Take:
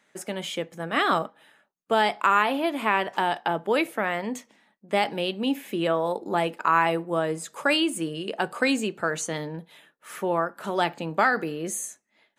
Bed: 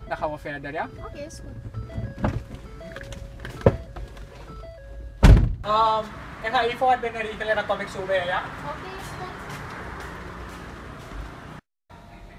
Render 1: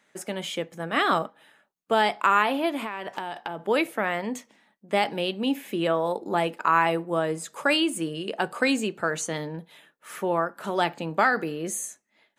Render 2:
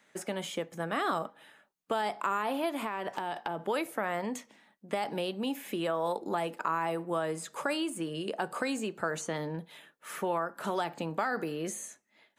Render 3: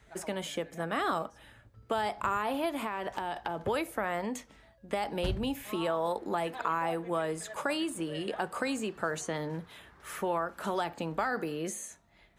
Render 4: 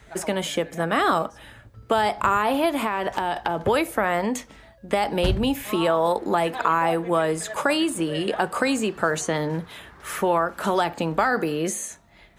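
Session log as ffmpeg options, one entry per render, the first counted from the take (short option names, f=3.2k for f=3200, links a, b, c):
-filter_complex "[0:a]asettb=1/sr,asplit=3[a][b][c];[a]atrim=end=2.774[d];[b]atrim=start=2.77:end=3.68,asetpts=PTS-STARTPTS,afade=t=in:d=0.004:c=qsin,afade=t=out:st=0.906:d=0.004:c=qsin,acompressor=threshold=-27dB:ratio=10:attack=3.2:release=140:knee=1:detection=peak[e];[c]atrim=start=3.676[f];[d][e]acrossfade=d=0.004:c1=hsin:c2=qsin[g];[g][f]acrossfade=d=0.004:c1=qsin:c2=hsin"
-filter_complex "[0:a]alimiter=limit=-15dB:level=0:latency=1:release=160,acrossover=split=750|1500|4700[a][b][c][d];[a]acompressor=threshold=-33dB:ratio=4[e];[b]acompressor=threshold=-31dB:ratio=4[f];[c]acompressor=threshold=-46dB:ratio=4[g];[d]acompressor=threshold=-43dB:ratio=4[h];[e][f][g][h]amix=inputs=4:normalize=0"
-filter_complex "[1:a]volume=-22.5dB[a];[0:a][a]amix=inputs=2:normalize=0"
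-af "volume=10dB"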